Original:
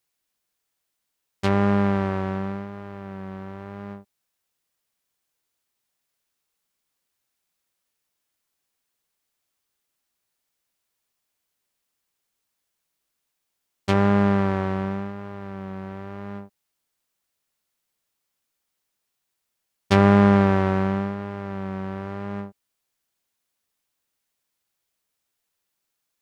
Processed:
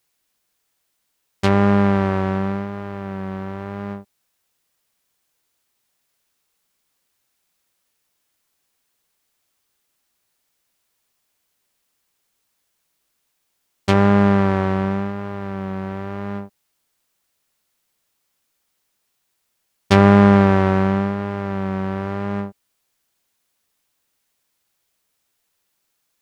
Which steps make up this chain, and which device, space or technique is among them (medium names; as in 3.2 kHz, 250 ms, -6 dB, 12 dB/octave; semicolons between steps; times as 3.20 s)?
parallel compression (in parallel at -4 dB: compression, threshold -27 dBFS, peak gain reduction 14 dB); on the sum: trim +3 dB